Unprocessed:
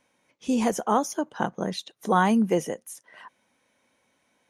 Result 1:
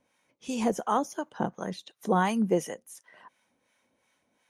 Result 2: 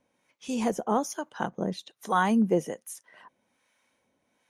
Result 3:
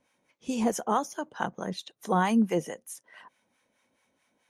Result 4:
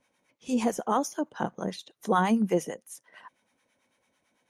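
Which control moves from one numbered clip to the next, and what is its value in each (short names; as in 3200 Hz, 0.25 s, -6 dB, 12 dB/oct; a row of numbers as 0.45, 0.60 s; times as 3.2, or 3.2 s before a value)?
harmonic tremolo, rate: 2.8, 1.2, 4.6, 9 Hz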